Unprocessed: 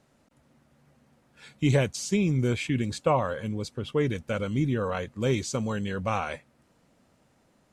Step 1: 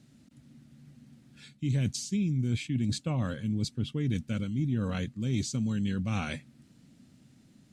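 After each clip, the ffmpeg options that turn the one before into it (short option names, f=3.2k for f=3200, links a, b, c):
-af "equalizer=f=125:t=o:w=1:g=9,equalizer=f=250:t=o:w=1:g=10,equalizer=f=500:t=o:w=1:g=-8,equalizer=f=1k:t=o:w=1:g=-9,equalizer=f=4k:t=o:w=1:g=5,equalizer=f=8k:t=o:w=1:g=3,areverse,acompressor=threshold=-27dB:ratio=6,areverse"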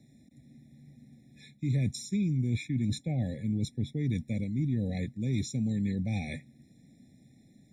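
-filter_complex "[0:a]acrossover=split=260|1900[a][b][c];[b]alimiter=level_in=9dB:limit=-24dB:level=0:latency=1,volume=-9dB[d];[a][d][c]amix=inputs=3:normalize=0,afftfilt=real='re*eq(mod(floor(b*sr/1024/840),2),0)':imag='im*eq(mod(floor(b*sr/1024/840),2),0)':win_size=1024:overlap=0.75"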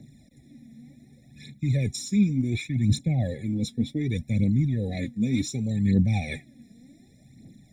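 -af "aphaser=in_gain=1:out_gain=1:delay=4.7:decay=0.61:speed=0.67:type=triangular,volume=4.5dB"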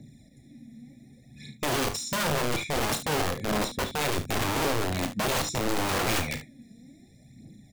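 -af "aeval=exprs='(mod(14.1*val(0)+1,2)-1)/14.1':c=same,aecho=1:1:33|52|73:0.335|0.188|0.224"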